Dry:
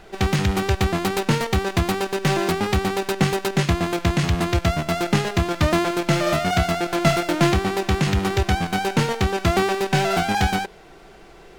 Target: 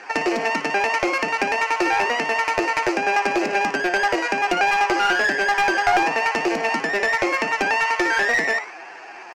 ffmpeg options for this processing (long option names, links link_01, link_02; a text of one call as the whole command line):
ffmpeg -i in.wav -filter_complex "[0:a]equalizer=frequency=1500:width_type=o:width=0.54:gain=-13,bandreject=frequency=60:width_type=h:width=6,bandreject=frequency=120:width_type=h:width=6,bandreject=frequency=180:width_type=h:width=6,bandreject=frequency=240:width_type=h:width=6,bandreject=frequency=300:width_type=h:width=6,bandreject=frequency=360:width_type=h:width=6,bandreject=frequency=420:width_type=h:width=6,bandreject=frequency=480:width_type=h:width=6,bandreject=frequency=540:width_type=h:width=6,asplit=2[link_01][link_02];[link_02]alimiter=limit=-15dB:level=0:latency=1:release=235,volume=1dB[link_03];[link_01][link_03]amix=inputs=2:normalize=0,acompressor=threshold=-18dB:ratio=16,atempo=0.53,highpass=frequency=130:width=0.5412,highpass=frequency=130:width=1.3066,equalizer=frequency=200:width_type=q:width=4:gain=-7,equalizer=frequency=300:width_type=q:width=4:gain=7,equalizer=frequency=420:width_type=q:width=4:gain=-8,equalizer=frequency=1100:width_type=q:width=4:gain=10,equalizer=frequency=1500:width_type=q:width=4:gain=-10,lowpass=frequency=2100:width=0.5412,lowpass=frequency=2100:width=1.3066,asplit=2[link_04][link_05];[link_05]asplit=4[link_06][link_07][link_08][link_09];[link_06]adelay=133,afreqshift=73,volume=-13dB[link_10];[link_07]adelay=266,afreqshift=146,volume=-20.1dB[link_11];[link_08]adelay=399,afreqshift=219,volume=-27.3dB[link_12];[link_09]adelay=532,afreqshift=292,volume=-34.4dB[link_13];[link_10][link_11][link_12][link_13]amix=inputs=4:normalize=0[link_14];[link_04][link_14]amix=inputs=2:normalize=0,aeval=exprs='clip(val(0),-1,0.106)':channel_layout=same,asetrate=103194,aresample=44100,volume=4dB" out.wav